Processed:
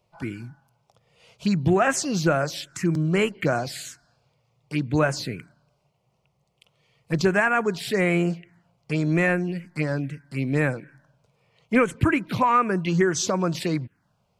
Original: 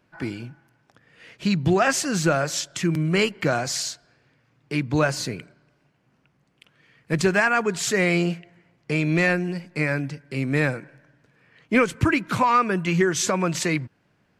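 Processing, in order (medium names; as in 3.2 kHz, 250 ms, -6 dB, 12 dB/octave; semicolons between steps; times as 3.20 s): touch-sensitive phaser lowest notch 270 Hz, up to 4.8 kHz, full sweep at -16.5 dBFS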